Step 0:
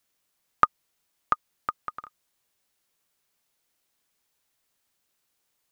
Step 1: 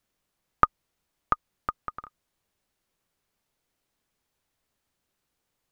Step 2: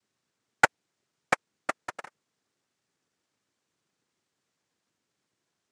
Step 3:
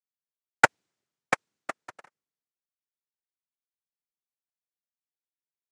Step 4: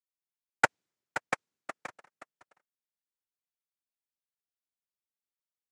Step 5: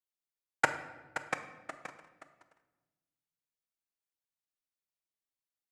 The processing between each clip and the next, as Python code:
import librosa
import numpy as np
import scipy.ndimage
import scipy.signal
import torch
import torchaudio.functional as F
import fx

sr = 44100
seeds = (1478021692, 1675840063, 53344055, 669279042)

y1 = fx.tilt_eq(x, sr, slope=-2.0)
y2 = fx.noise_vocoder(y1, sr, seeds[0], bands=3)
y3 = fx.band_widen(y2, sr, depth_pct=70)
y3 = y3 * librosa.db_to_amplitude(-3.0)
y4 = y3 + 10.0 ** (-11.0 / 20.0) * np.pad(y3, (int(525 * sr / 1000.0), 0))[:len(y3)]
y4 = y4 * librosa.db_to_amplitude(-6.0)
y5 = fx.room_shoebox(y4, sr, seeds[1], volume_m3=700.0, walls='mixed', distance_m=0.6)
y5 = y5 * librosa.db_to_amplitude(-3.5)